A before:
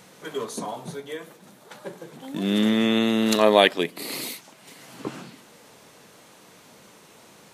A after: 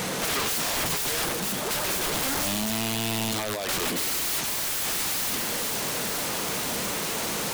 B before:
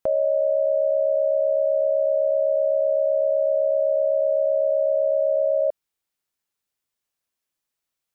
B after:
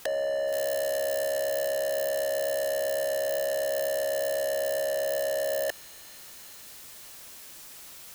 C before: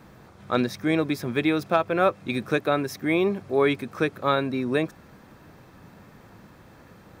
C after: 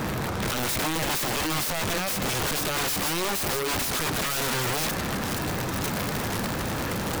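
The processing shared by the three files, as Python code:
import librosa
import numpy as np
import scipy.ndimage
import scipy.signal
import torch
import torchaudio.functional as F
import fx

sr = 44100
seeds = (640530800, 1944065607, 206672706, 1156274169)

p1 = fx.over_compress(x, sr, threshold_db=-33.0, ratio=-1.0)
p2 = fx.power_curve(p1, sr, exponent=0.5)
p3 = p2 + fx.echo_wet_highpass(p2, sr, ms=473, feedback_pct=64, hz=4000.0, wet_db=-3.5, dry=0)
y = (np.mod(10.0 ** (23.5 / 20.0) * p3 + 1.0, 2.0) - 1.0) / 10.0 ** (23.5 / 20.0)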